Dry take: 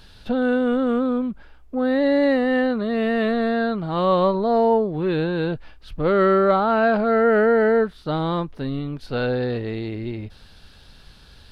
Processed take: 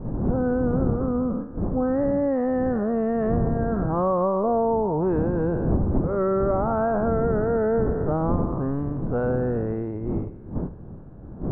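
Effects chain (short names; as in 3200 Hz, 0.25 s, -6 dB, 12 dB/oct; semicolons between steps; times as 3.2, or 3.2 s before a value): spectral trails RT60 1.41 s; wind noise 220 Hz -22 dBFS; compressor 12:1, threshold -18 dBFS, peak gain reduction 13.5 dB; LPF 1200 Hz 24 dB/oct; gate -28 dBFS, range -6 dB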